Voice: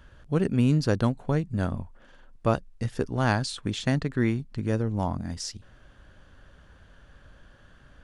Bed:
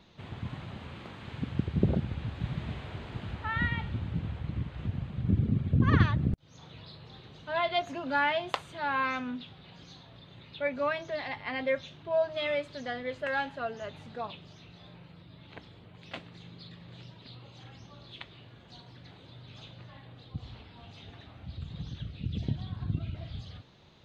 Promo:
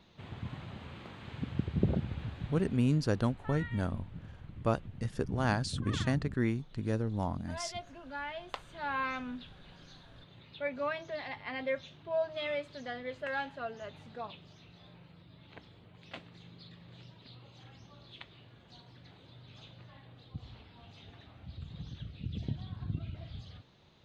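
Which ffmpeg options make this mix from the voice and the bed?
ffmpeg -i stem1.wav -i stem2.wav -filter_complex "[0:a]adelay=2200,volume=-6dB[link_01];[1:a]volume=5.5dB,afade=type=out:start_time=2.2:duration=0.61:silence=0.316228,afade=type=in:start_time=8.33:duration=0.58:silence=0.375837[link_02];[link_01][link_02]amix=inputs=2:normalize=0" out.wav

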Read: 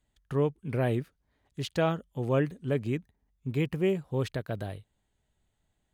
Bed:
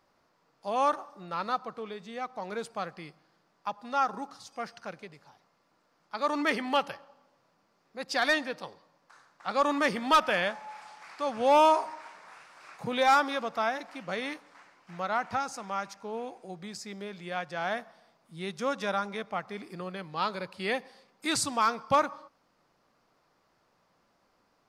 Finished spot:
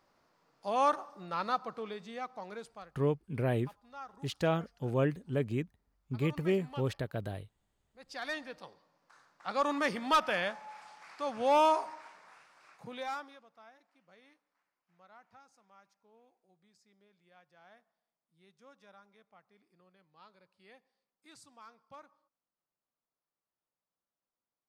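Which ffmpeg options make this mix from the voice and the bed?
ffmpeg -i stem1.wav -i stem2.wav -filter_complex "[0:a]adelay=2650,volume=-3dB[link_01];[1:a]volume=13dB,afade=type=out:start_time=1.94:duration=0.98:silence=0.133352,afade=type=in:start_time=7.92:duration=1.32:silence=0.188365,afade=type=out:start_time=11.9:duration=1.53:silence=0.0668344[link_02];[link_01][link_02]amix=inputs=2:normalize=0" out.wav

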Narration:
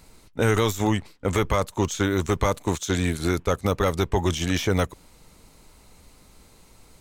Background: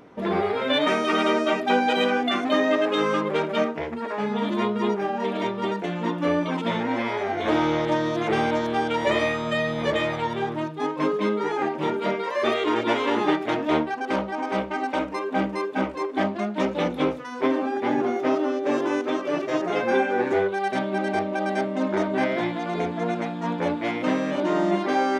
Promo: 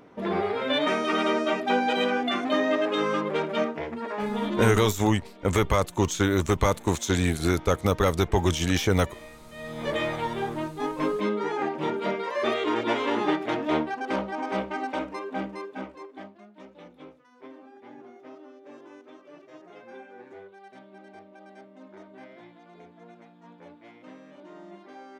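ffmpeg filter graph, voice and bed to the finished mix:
ffmpeg -i stem1.wav -i stem2.wav -filter_complex "[0:a]adelay=4200,volume=0dB[link_01];[1:a]volume=16.5dB,afade=type=out:start_time=4.71:duration=0.23:silence=0.105925,afade=type=in:start_time=9.53:duration=0.49:silence=0.105925,afade=type=out:start_time=14.61:duration=1.74:silence=0.0944061[link_02];[link_01][link_02]amix=inputs=2:normalize=0" out.wav

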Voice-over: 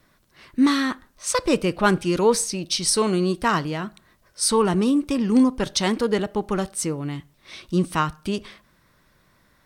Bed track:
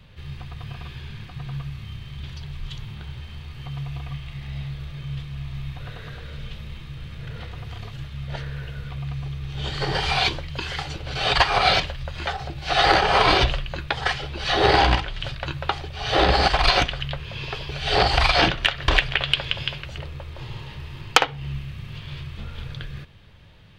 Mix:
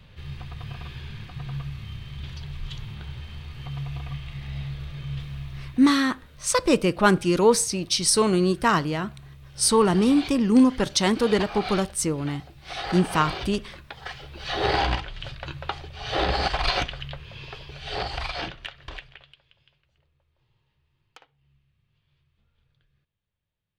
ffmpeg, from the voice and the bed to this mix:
ffmpeg -i stem1.wav -i stem2.wav -filter_complex "[0:a]adelay=5200,volume=0.5dB[link_01];[1:a]volume=8dB,afade=type=out:start_time=5.28:duration=0.67:silence=0.199526,afade=type=in:start_time=13.98:duration=0.69:silence=0.354813,afade=type=out:start_time=16.85:duration=2.51:silence=0.0354813[link_02];[link_01][link_02]amix=inputs=2:normalize=0" out.wav

